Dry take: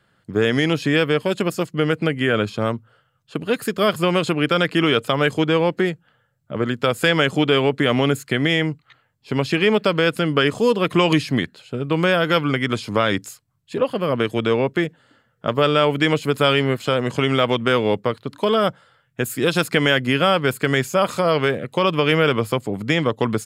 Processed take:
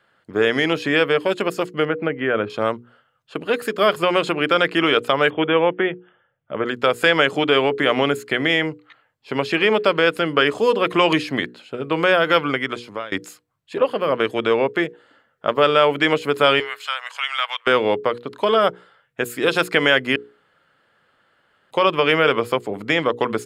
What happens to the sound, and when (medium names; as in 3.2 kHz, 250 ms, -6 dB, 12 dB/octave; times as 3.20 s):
1.85–2.50 s: distance through air 470 m
5.30–6.66 s: brick-wall FIR low-pass 3.6 kHz
12.48–13.12 s: fade out, to -23 dB
16.60–17.67 s: Bessel high-pass 1.4 kHz, order 6
20.16–21.71 s: room tone
whole clip: tone controls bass -13 dB, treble -8 dB; hum notches 60/120/180/240/300/360/420/480 Hz; trim +3 dB